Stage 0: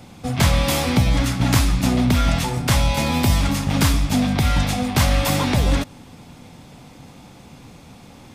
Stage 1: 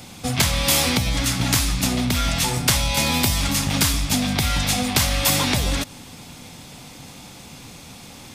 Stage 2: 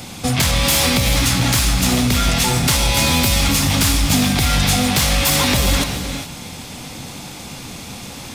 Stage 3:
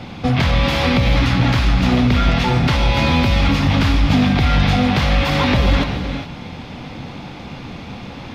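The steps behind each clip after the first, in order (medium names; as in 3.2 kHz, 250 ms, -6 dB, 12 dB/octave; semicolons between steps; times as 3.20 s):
compression, threshold -19 dBFS, peak gain reduction 8 dB; treble shelf 2.2 kHz +11.5 dB
in parallel at +2.5 dB: peak limiter -14 dBFS, peak gain reduction 11 dB; on the sum: saturation -9.5 dBFS, distortion -17 dB; gated-style reverb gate 440 ms rising, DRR 6 dB
distance through air 300 m; trim +3 dB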